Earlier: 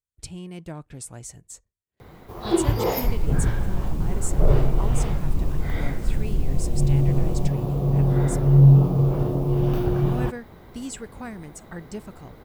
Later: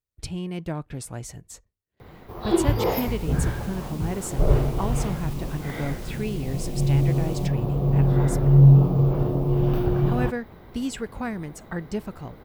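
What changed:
speech +6.0 dB; second sound: add tilt EQ +4.5 dB/octave; master: add peaking EQ 8 kHz -9 dB 0.89 oct

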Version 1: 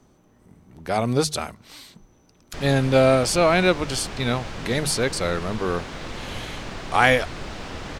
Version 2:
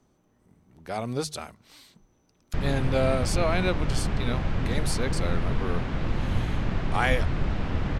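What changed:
speech -8.5 dB; background: add tone controls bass +11 dB, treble -14 dB

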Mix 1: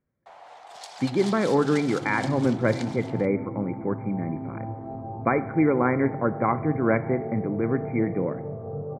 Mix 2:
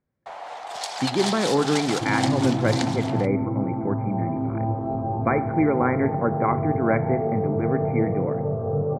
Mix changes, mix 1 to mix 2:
first sound +10.5 dB; second sound +9.0 dB

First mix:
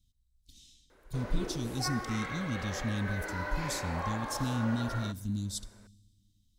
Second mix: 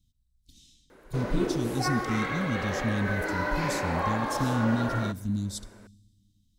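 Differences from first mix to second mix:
background +6.5 dB; master: add peaking EQ 200 Hz +5.5 dB 2.3 oct

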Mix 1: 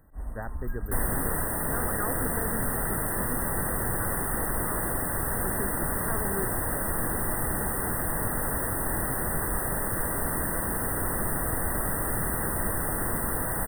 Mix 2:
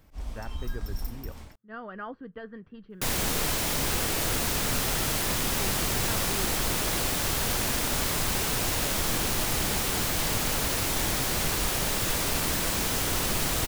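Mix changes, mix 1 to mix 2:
speech -3.5 dB; second sound: entry +2.10 s; master: remove brick-wall FIR band-stop 2–8.1 kHz

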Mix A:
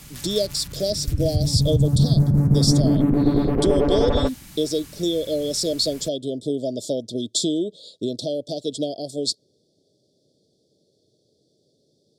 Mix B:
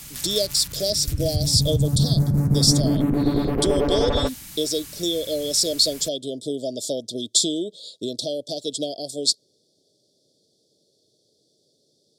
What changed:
background: add bass shelf 120 Hz +7.5 dB; master: add tilt EQ +2 dB/octave

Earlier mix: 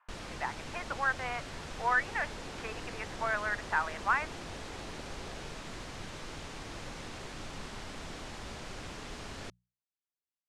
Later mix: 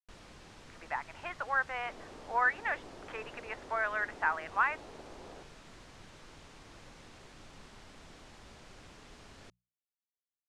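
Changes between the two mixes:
speech: entry +0.50 s; first sound -10.5 dB

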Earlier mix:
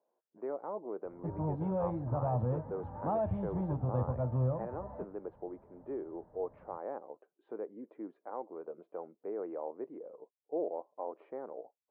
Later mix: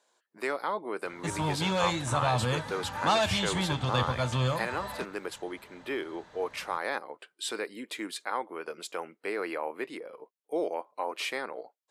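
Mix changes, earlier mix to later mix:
background: add bass shelf 140 Hz -7 dB; master: remove four-pole ladder low-pass 880 Hz, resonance 25%

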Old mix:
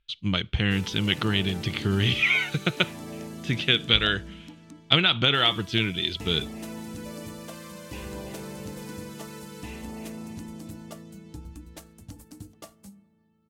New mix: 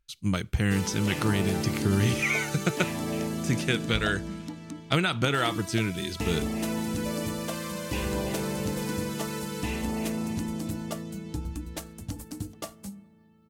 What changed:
speech: remove resonant low-pass 3.3 kHz, resonance Q 4.5; background +7.5 dB

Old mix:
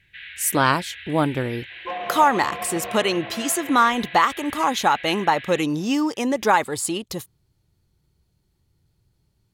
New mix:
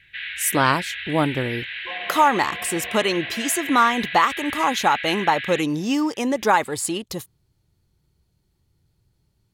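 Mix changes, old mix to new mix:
first sound +7.5 dB; second sound -6.5 dB

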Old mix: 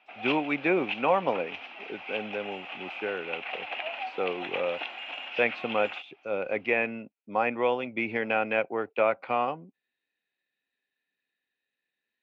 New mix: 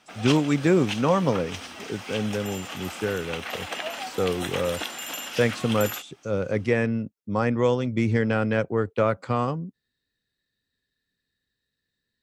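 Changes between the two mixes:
background +4.5 dB; master: remove cabinet simulation 430–3000 Hz, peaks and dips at 460 Hz -4 dB, 760 Hz +6 dB, 1.2 kHz -4 dB, 1.7 kHz -4 dB, 2.5 kHz +10 dB

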